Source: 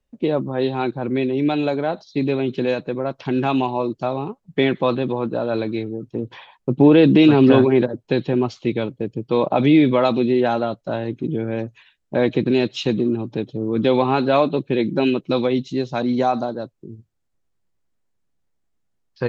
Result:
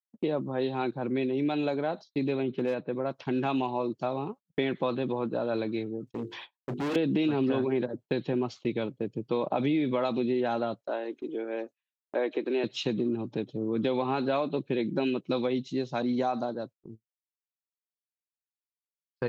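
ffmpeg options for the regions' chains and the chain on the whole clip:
-filter_complex "[0:a]asettb=1/sr,asplit=3[a][b][c];[a]atrim=end=2.434[d];[b]atrim=start=2.43:end=2.93,asetpts=PTS-STARTPTS,afade=t=in:d=0.004:c=qsin,afade=t=out:st=0.496:d=0.004:c=qsin,lowpass=3.5k,highshelf=f=2.7k:g=-6,asoftclip=type=hard:threshold=-13dB[e];[c]atrim=start=2.926[f];[d][e]acrossfade=d=0.004:c1=hsin:c2=qsin[g];[g][f]acrossfade=d=0.004:c1=qsin:c2=hsin,asettb=1/sr,asplit=3[h][i][j];[h]atrim=end=6.074[k];[i]atrim=start=6.07:end=6.96,asetpts=PTS-STARTPTS,afade=t=in:d=0.004:c=qsin,afade=t=out:st=0.886:d=0.004:c=qsin,highshelf=f=2.4k:g=10.5,bandreject=f=50:t=h:w=6,bandreject=f=100:t=h:w=6,bandreject=f=150:t=h:w=6,bandreject=f=200:t=h:w=6,bandreject=f=250:t=h:w=6,bandreject=f=300:t=h:w=6,bandreject=f=350:t=h:w=6,bandreject=f=400:t=h:w=6,bandreject=f=450:t=h:w=6,volume=21.5dB,asoftclip=hard,volume=-21.5dB[l];[j]atrim=start=6.956[m];[k][l]acrossfade=d=0.004:c1=hsin:c2=qsin[n];[n][m]acrossfade=d=0.004:c1=qsin:c2=hsin,asettb=1/sr,asplit=3[o][p][q];[o]atrim=end=10.814[r];[p]atrim=start=10.81:end=12.64,asetpts=PTS-STARTPTS,afade=t=in:d=0.004:c=qsin,afade=t=out:st=1.826:d=0.004:c=qsin,acrossover=split=3200[s][t];[t]acompressor=threshold=-52dB:ratio=4:attack=1:release=60[u];[s][u]amix=inputs=2:normalize=0,highpass=f=320:w=0.5412,highpass=f=320:w=1.3066[v];[q]atrim=start=12.636[w];[r][v]acrossfade=d=0.004:c1=hsin:c2=qsin[x];[x][w]acrossfade=d=0.004:c1=qsin:c2=hsin,highpass=120,agate=range=-35dB:threshold=-37dB:ratio=16:detection=peak,acompressor=threshold=-17dB:ratio=6,volume=-6.5dB"

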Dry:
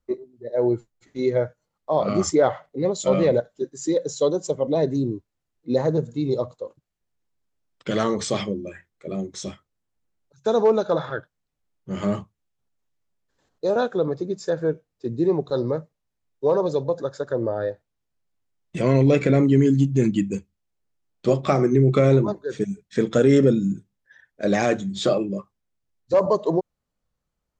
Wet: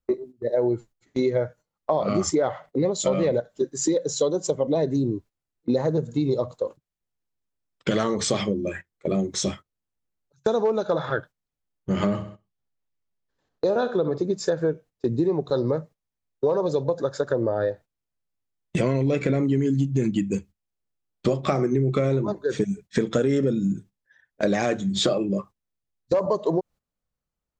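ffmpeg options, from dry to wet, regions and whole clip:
-filter_complex "[0:a]asettb=1/sr,asplit=3[a][b][c];[a]atrim=end=11.934[d];[b]atrim=start=11.93:end=14.18,asetpts=PTS-STARTPTS,afade=t=in:d=0.004:c=qsin,afade=t=out:st=2.246:d=0.004:c=qsin,lowpass=5.8k,aecho=1:1:65|130|195|260:0.2|0.0778|0.0303|0.0118,atrim=end_sample=99225[e];[c]atrim=start=14.176[f];[d][e]acrossfade=d=0.004:c1=hsin:c2=qsin[g];[g][f]acrossfade=d=0.004:c1=qsin:c2=hsin,agate=range=-15dB:threshold=-43dB:ratio=16:detection=peak,acompressor=threshold=-29dB:ratio=5,volume=8.5dB"

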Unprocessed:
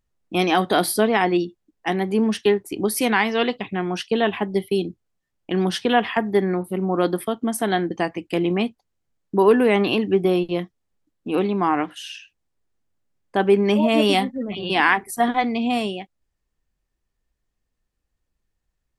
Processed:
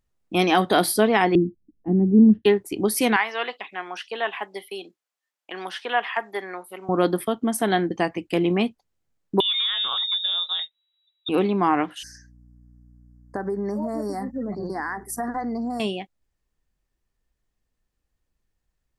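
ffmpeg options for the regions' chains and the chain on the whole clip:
-filter_complex "[0:a]asettb=1/sr,asplit=3[a][b][c];[a]atrim=end=1.354[d];[b]atrim=start=1.35:end=2.45,asetpts=PTS-STARTPTS,afade=t=in:d=0.004:c=qsin,afade=t=out:st=1.096:d=0.004:c=qsin,lowpass=f=280:t=q:w=1.5,lowshelf=f=180:g=9.5[e];[c]atrim=start=2.446[f];[d][e]acrossfade=d=0.004:c1=hsin:c2=qsin[g];[g][f]acrossfade=d=0.004:c1=qsin:c2=hsin,asettb=1/sr,asplit=3[h][i][j];[h]atrim=end=3.164[k];[i]atrim=start=3.16:end=6.89,asetpts=PTS-STARTPTS,afade=t=in:d=0.004:c=qsin,afade=t=out:st=3.726:d=0.004:c=qsin,highpass=820,acrossover=split=2700[l][m];[m]acompressor=threshold=-42dB:ratio=4:attack=1:release=60[n];[l][n]amix=inputs=2:normalize=0[o];[j]atrim=start=6.886[p];[k][o]acrossfade=d=0.004:c1=hsin:c2=qsin[q];[q][p]acrossfade=d=0.004:c1=qsin:c2=hsin,asettb=1/sr,asplit=3[r][s][t];[r]atrim=end=9.404[u];[s]atrim=start=9.4:end=11.29,asetpts=PTS-STARTPTS,afade=t=in:d=0.004:c=qsin,afade=t=out:st=1.886:d=0.004:c=qsin,acompressor=threshold=-21dB:ratio=6:attack=3.2:release=140:knee=1:detection=peak,lowpass=f=3.3k:t=q:w=0.5098,lowpass=f=3.3k:t=q:w=0.6013,lowpass=f=3.3k:t=q:w=0.9,lowpass=f=3.3k:t=q:w=2.563,afreqshift=-3900[v];[t]atrim=start=11.286[w];[u][v]acrossfade=d=0.004:c1=hsin:c2=qsin[x];[x][w]acrossfade=d=0.004:c1=qsin:c2=hsin,asettb=1/sr,asplit=3[y][z][aa];[y]atrim=end=12.034[ab];[z]atrim=start=12.03:end=15.8,asetpts=PTS-STARTPTS,afade=t=in:d=0.004:c=qsin,afade=t=out:st=3.766:d=0.004:c=qsin,acompressor=threshold=-24dB:ratio=6:attack=3.2:release=140:knee=1:detection=peak,aeval=exprs='val(0)+0.00316*(sin(2*PI*60*n/s)+sin(2*PI*2*60*n/s)/2+sin(2*PI*3*60*n/s)/3+sin(2*PI*4*60*n/s)/4+sin(2*PI*5*60*n/s)/5)':c=same,asuperstop=centerf=3000:order=12:qfactor=1.1[ac];[aa]atrim=start=15.796[ad];[ab][ac]acrossfade=d=0.004:c1=hsin:c2=qsin[ae];[ae][ad]acrossfade=d=0.004:c1=qsin:c2=hsin"

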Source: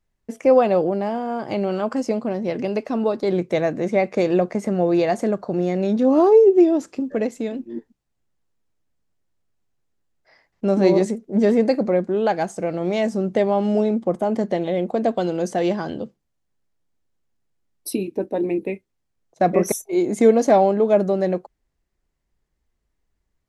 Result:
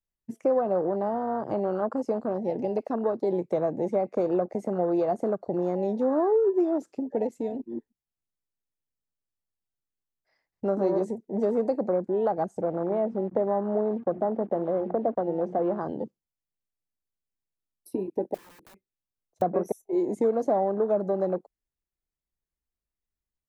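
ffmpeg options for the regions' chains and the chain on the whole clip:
-filter_complex "[0:a]asettb=1/sr,asplit=3[a][b][c];[a]atrim=end=12.614[d];[b]atrim=start=12.61:end=15.81,asetpts=PTS-STARTPTS,afade=t=in:d=0.004:c=qsin,afade=t=out:st=3.196:d=0.004:c=qsin,bandreject=f=60:t=h:w=6,bandreject=f=120:t=h:w=6,bandreject=f=180:t=h:w=6,bandreject=f=240:t=h:w=6,bandreject=f=300:t=h:w=6,bandreject=f=360:t=h:w=6,acrusher=bits=5:mix=0:aa=0.5,lowpass=1.7k[e];[c]atrim=start=15.806[f];[d][e]acrossfade=d=0.004:c1=hsin:c2=qsin[g];[g][f]acrossfade=d=0.004:c1=qsin:c2=hsin,asettb=1/sr,asplit=3[h][i][j];[h]atrim=end=18.344[k];[i]atrim=start=18.34:end=19.42,asetpts=PTS-STARTPTS,afade=t=in:d=0.004:c=qsin,afade=t=out:st=1.076:d=0.004:c=qsin,aeval=exprs='(mod(15.8*val(0)+1,2)-1)/15.8':c=same,acompressor=threshold=-32dB:ratio=3:attack=3.2:release=140:knee=1:detection=peak[l];[j]atrim=start=19.416[m];[k][l]acrossfade=d=0.004:c1=hsin:c2=qsin[n];[n][m]acrossfade=d=0.004:c1=qsin:c2=hsin,afwtdn=0.0501,highshelf=f=8.8k:g=11,acrossover=split=360|1500[o][p][q];[o]acompressor=threshold=-33dB:ratio=4[r];[p]acompressor=threshold=-22dB:ratio=4[s];[q]acompressor=threshold=-52dB:ratio=4[t];[r][s][t]amix=inputs=3:normalize=0,volume=-1.5dB"

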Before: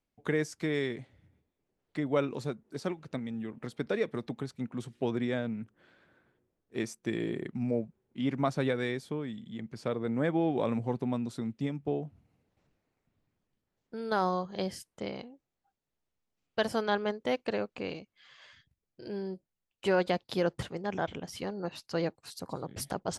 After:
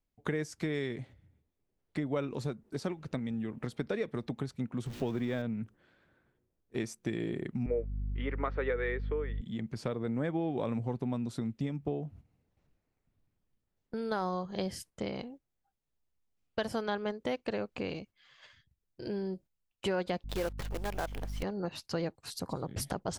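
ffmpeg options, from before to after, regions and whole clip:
-filter_complex "[0:a]asettb=1/sr,asplit=3[a][b][c];[a]atrim=end=4.864[d];[b]atrim=start=4.86:end=5.42,asetpts=PTS-STARTPTS,afade=t=in:d=0.004:c=qsin,afade=t=out:st=0.556:d=0.004:c=qsin,aeval=exprs='val(0)+0.5*0.00631*sgn(val(0))':c=same,equalizer=f=10k:t=o:w=0.55:g=-6[e];[c]atrim=start=5.416[f];[d][e]acrossfade=d=0.004:c1=hsin:c2=qsin[g];[g][f]acrossfade=d=0.004:c1=qsin:c2=hsin,asettb=1/sr,asplit=3[h][i][j];[h]atrim=end=7.664[k];[i]atrim=start=7.66:end=9.41,asetpts=PTS-STARTPTS,afade=t=in:d=0.004:c=qsin,afade=t=out:st=1.746:d=0.004:c=qsin,highpass=f=350:w=0.5412,highpass=f=350:w=1.3066,equalizer=f=460:t=q:w=4:g=10,equalizer=f=680:t=q:w=4:g=-6,equalizer=f=1.3k:t=q:w=4:g=7,equalizer=f=1.9k:t=q:w=4:g=8,lowpass=f=3k:w=0.5412,lowpass=f=3k:w=1.3066,aeval=exprs='val(0)+0.01*(sin(2*PI*50*n/s)+sin(2*PI*2*50*n/s)/2+sin(2*PI*3*50*n/s)/3+sin(2*PI*4*50*n/s)/4+sin(2*PI*5*50*n/s)/5)':c=same[l];[j]atrim=start=9.406[m];[k][l]acrossfade=d=0.004:c1=hsin:c2=qsin[n];[n][m]acrossfade=d=0.004:c1=qsin:c2=hsin,asettb=1/sr,asplit=3[o][p][q];[o]atrim=end=20.244[r];[p]atrim=start=20.24:end=21.43,asetpts=PTS-STARTPTS,afade=t=in:d=0.004:c=qsin,afade=t=out:st=1.186:d=0.004:c=qsin,bass=f=250:g=-13,treble=f=4k:g=-10,acrusher=bits=7:dc=4:mix=0:aa=0.000001,aeval=exprs='val(0)+0.00501*(sin(2*PI*50*n/s)+sin(2*PI*2*50*n/s)/2+sin(2*PI*3*50*n/s)/3+sin(2*PI*4*50*n/s)/4+sin(2*PI*5*50*n/s)/5)':c=same[s];[q]atrim=start=21.426[t];[r][s]acrossfade=d=0.004:c1=hsin:c2=qsin[u];[u][t]acrossfade=d=0.004:c1=qsin:c2=hsin,agate=range=-8dB:threshold=-54dB:ratio=16:detection=peak,lowshelf=f=92:g=11.5,acompressor=threshold=-37dB:ratio=2.5,volume=3.5dB"

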